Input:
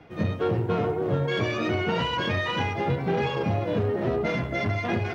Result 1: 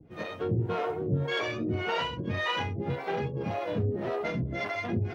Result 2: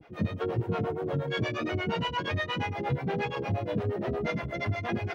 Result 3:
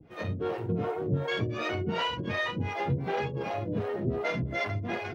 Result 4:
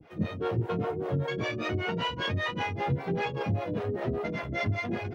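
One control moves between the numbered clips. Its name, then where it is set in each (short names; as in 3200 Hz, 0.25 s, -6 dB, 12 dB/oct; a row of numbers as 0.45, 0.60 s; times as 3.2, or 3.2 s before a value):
harmonic tremolo, rate: 1.8, 8.5, 2.7, 5.1 Hz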